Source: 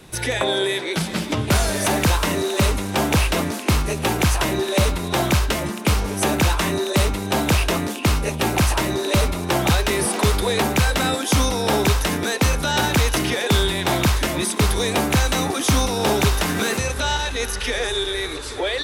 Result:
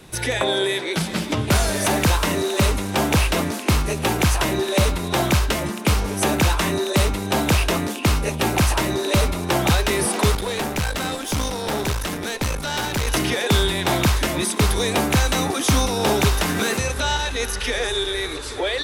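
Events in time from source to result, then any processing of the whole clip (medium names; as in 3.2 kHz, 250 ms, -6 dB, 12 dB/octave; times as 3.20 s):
10.35–13.08 s: valve stage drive 18 dB, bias 0.8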